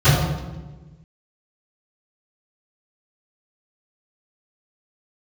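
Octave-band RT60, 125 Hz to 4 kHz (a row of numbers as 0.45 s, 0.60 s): 1.7 s, 1.6 s, 1.4 s, 1.1 s, 0.95 s, 0.85 s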